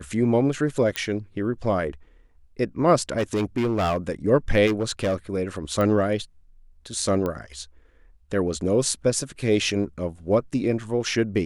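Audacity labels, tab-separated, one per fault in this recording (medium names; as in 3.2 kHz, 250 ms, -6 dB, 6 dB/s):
0.960000	0.960000	pop -9 dBFS
3.170000	3.970000	clipped -19 dBFS
4.660000	5.140000	clipped -19 dBFS
5.810000	5.810000	pop -14 dBFS
7.260000	7.260000	pop -16 dBFS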